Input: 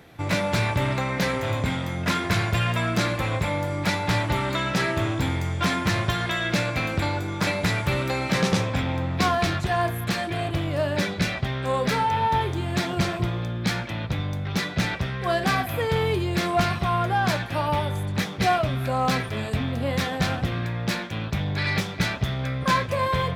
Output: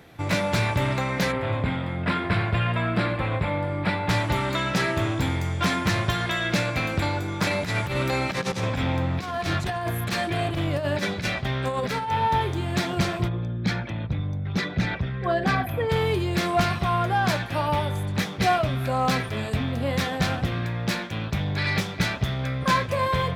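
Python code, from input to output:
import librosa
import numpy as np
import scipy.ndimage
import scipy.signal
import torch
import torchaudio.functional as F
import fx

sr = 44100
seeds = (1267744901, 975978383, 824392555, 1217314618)

y = fx.moving_average(x, sr, points=7, at=(1.31, 4.08), fade=0.02)
y = fx.over_compress(y, sr, threshold_db=-25.0, ratio=-0.5, at=(7.48, 12.12))
y = fx.envelope_sharpen(y, sr, power=1.5, at=(13.27, 15.89), fade=0.02)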